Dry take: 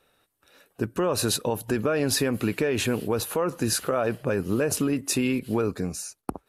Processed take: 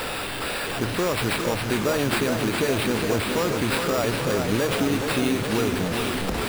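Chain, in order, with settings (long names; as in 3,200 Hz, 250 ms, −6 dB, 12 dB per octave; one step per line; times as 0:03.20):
linear delta modulator 64 kbit/s, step −23 dBFS
sample-rate reduction 6,300 Hz, jitter 0%
feedback echo with a swinging delay time 413 ms, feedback 71%, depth 97 cents, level −6 dB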